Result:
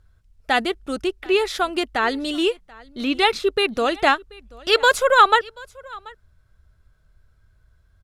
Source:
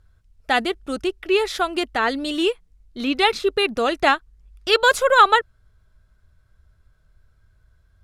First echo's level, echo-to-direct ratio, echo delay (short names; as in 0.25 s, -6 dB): -23.5 dB, -23.5 dB, 0.734 s